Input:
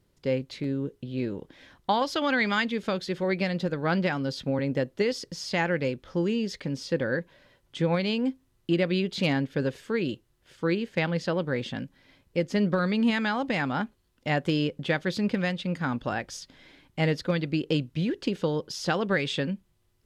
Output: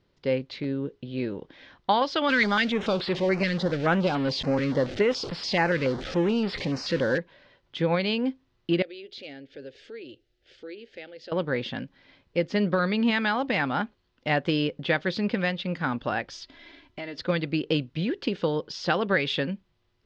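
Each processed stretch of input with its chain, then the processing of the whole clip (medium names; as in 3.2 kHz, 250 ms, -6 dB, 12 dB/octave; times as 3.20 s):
2.29–7.18 s: jump at every zero crossing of -29 dBFS + step-sequenced notch 7 Hz 760–6200 Hz
8.82–11.32 s: compression 2:1, threshold -46 dBFS + static phaser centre 430 Hz, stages 4
16.33–17.18 s: comb 3 ms, depth 71% + compression, threshold -34 dBFS
whole clip: low-pass 4.9 kHz 24 dB/octave; bass shelf 260 Hz -6 dB; trim +3 dB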